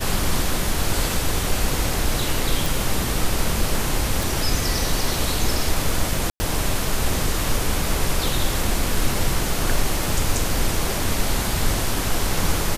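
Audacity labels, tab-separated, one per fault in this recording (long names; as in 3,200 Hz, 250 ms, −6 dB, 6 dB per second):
2.660000	2.660000	click
4.230000	4.230000	click
6.300000	6.400000	drop-out 100 ms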